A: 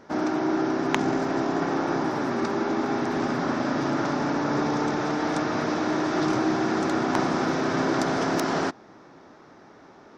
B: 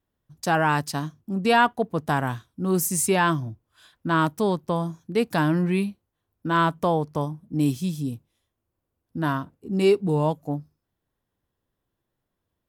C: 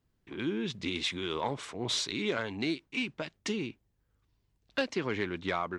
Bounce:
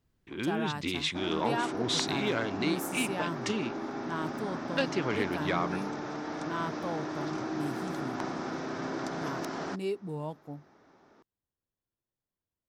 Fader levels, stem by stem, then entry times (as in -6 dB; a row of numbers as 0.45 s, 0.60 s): -11.0 dB, -14.5 dB, +1.0 dB; 1.05 s, 0.00 s, 0.00 s